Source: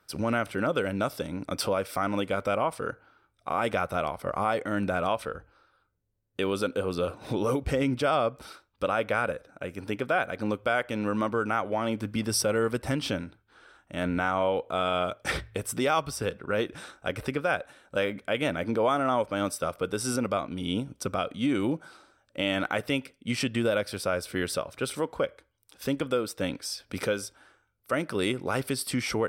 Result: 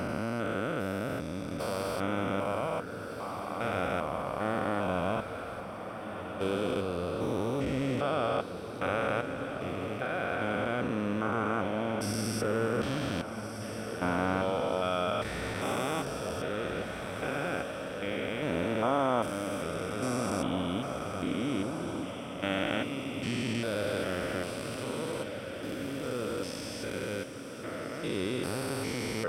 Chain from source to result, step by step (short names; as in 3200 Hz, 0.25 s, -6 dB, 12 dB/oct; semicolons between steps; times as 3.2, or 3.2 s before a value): stepped spectrum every 0.4 s; diffused feedback echo 1.526 s, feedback 59%, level -8.5 dB